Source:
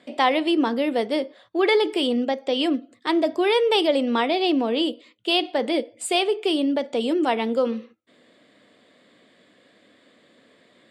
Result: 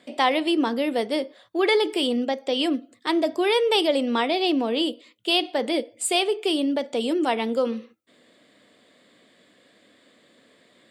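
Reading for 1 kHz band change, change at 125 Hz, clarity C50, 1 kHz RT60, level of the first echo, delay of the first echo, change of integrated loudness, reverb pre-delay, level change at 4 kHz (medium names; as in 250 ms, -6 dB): -1.5 dB, no reading, no reverb, no reverb, no echo, no echo, -1.0 dB, no reverb, +0.5 dB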